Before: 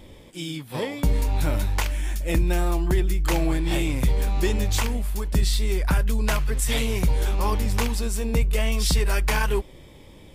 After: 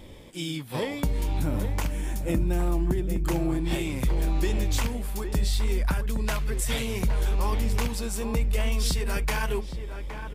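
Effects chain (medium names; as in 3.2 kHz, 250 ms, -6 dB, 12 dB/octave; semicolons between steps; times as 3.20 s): 1.39–3.65 s: graphic EQ 125/250/2000/4000 Hz +5/+8/-3/-4 dB; compression 3:1, threshold -24 dBFS, peak gain reduction 9 dB; echo from a far wall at 140 m, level -8 dB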